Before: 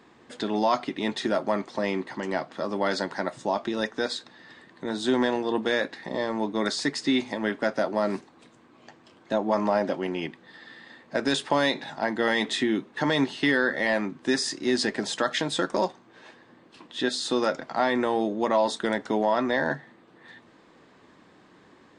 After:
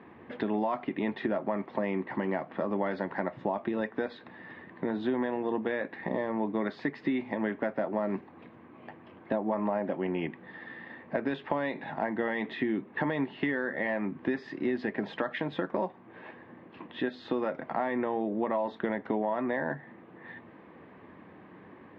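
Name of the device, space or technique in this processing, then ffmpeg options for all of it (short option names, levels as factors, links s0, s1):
bass amplifier: -af "acompressor=threshold=0.0251:ratio=4,highpass=65,equalizer=f=88:t=q:w=4:g=6,equalizer=f=190:t=q:w=4:g=3,equalizer=f=1400:t=q:w=4:g=-5,lowpass=f=2400:w=0.5412,lowpass=f=2400:w=1.3066,volume=1.58"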